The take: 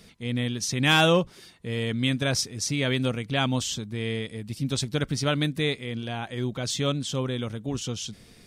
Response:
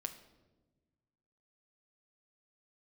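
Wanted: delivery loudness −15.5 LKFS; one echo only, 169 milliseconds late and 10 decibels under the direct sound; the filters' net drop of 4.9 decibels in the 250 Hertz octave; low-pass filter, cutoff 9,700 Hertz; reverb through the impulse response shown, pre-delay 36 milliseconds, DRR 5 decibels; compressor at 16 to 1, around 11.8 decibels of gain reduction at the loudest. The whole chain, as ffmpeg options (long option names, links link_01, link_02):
-filter_complex "[0:a]lowpass=9700,equalizer=frequency=250:width_type=o:gain=-6.5,acompressor=threshold=-28dB:ratio=16,aecho=1:1:169:0.316,asplit=2[link_01][link_02];[1:a]atrim=start_sample=2205,adelay=36[link_03];[link_02][link_03]afir=irnorm=-1:irlink=0,volume=-3dB[link_04];[link_01][link_04]amix=inputs=2:normalize=0,volume=16dB"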